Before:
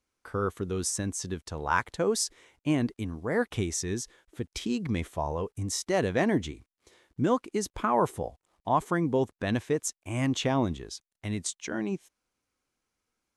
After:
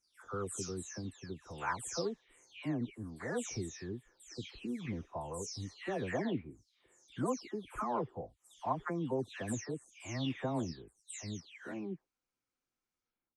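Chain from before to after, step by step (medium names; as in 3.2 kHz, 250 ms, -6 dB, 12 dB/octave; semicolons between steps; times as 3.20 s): delay that grows with frequency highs early, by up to 362 ms; low-pass 8.9 kHz 12 dB/octave; trim -9 dB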